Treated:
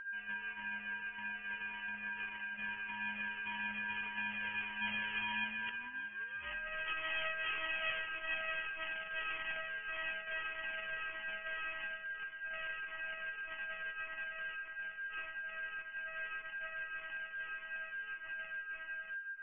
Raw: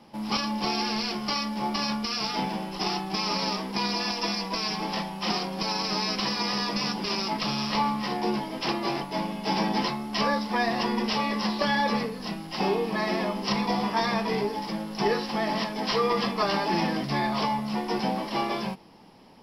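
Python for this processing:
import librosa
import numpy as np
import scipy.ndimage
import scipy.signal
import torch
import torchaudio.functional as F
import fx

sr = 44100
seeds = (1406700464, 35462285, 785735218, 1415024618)

p1 = np.r_[np.sort(x[:len(x) // 64 * 64].reshape(-1, 64), axis=1).ravel(), x[len(x) // 64 * 64:]]
p2 = fx.doppler_pass(p1, sr, speed_mps=27, closest_m=6.0, pass_at_s=6.23)
p3 = fx.highpass(p2, sr, hz=830.0, slope=6)
p4 = fx.over_compress(p3, sr, threshold_db=-45.0, ratio=-0.5)
p5 = p4 + 10.0 ** (-50.0 / 20.0) * np.sin(2.0 * np.pi * 1600.0 * np.arange(len(p4)) / sr)
p6 = 10.0 ** (-39.0 / 20.0) * np.tanh(p5 / 10.0 ** (-39.0 / 20.0))
p7 = p6 + fx.echo_single(p6, sr, ms=1134, db=-17.5, dry=0)
p8 = fx.freq_invert(p7, sr, carrier_hz=3200)
p9 = fx.comb_cascade(p8, sr, direction='falling', hz=1.7)
y = p9 * librosa.db_to_amplitude(13.5)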